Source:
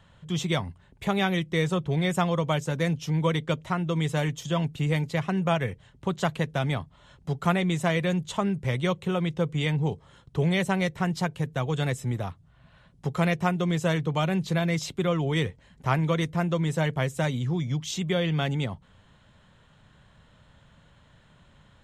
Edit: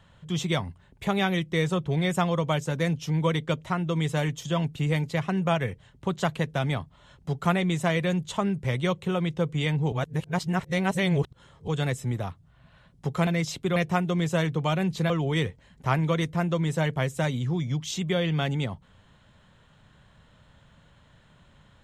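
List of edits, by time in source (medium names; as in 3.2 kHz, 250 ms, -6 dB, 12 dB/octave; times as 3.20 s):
9.92–11.68 s: reverse
14.61–15.10 s: move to 13.27 s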